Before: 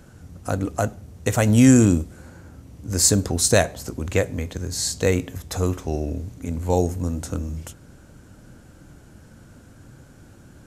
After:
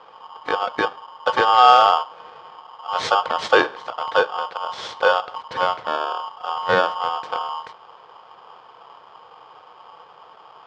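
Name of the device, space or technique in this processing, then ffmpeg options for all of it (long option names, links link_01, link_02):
ring modulator pedal into a guitar cabinet: -af "aeval=exprs='val(0)*sgn(sin(2*PI*1000*n/s))':channel_layout=same,highpass=100,equalizer=frequency=250:width_type=q:width=4:gain=-8,equalizer=frequency=490:width_type=q:width=4:gain=7,equalizer=frequency=2700:width_type=q:width=4:gain=-8,lowpass=frequency=3700:width=0.5412,lowpass=frequency=3700:width=1.3066,volume=1.5dB"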